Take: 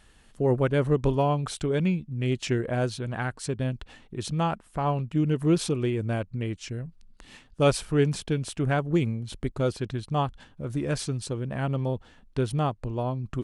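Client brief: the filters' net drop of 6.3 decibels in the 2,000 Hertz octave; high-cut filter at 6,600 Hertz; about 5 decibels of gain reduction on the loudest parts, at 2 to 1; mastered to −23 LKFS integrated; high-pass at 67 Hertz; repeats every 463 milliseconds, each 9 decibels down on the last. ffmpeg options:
ffmpeg -i in.wav -af "highpass=67,lowpass=6600,equalizer=frequency=2000:width_type=o:gain=-9,acompressor=threshold=-26dB:ratio=2,aecho=1:1:463|926|1389|1852:0.355|0.124|0.0435|0.0152,volume=7.5dB" out.wav

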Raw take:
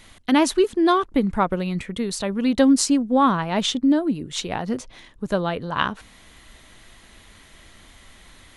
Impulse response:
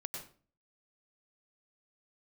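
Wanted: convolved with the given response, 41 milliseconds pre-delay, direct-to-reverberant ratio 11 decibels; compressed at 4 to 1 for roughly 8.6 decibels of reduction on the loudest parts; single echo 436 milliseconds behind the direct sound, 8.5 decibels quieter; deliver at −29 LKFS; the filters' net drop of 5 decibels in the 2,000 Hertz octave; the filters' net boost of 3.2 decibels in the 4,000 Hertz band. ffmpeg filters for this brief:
-filter_complex "[0:a]equalizer=frequency=2000:width_type=o:gain=-8.5,equalizer=frequency=4000:width_type=o:gain=6.5,acompressor=threshold=-23dB:ratio=4,aecho=1:1:436:0.376,asplit=2[link_01][link_02];[1:a]atrim=start_sample=2205,adelay=41[link_03];[link_02][link_03]afir=irnorm=-1:irlink=0,volume=-10dB[link_04];[link_01][link_04]amix=inputs=2:normalize=0,volume=-2.5dB"

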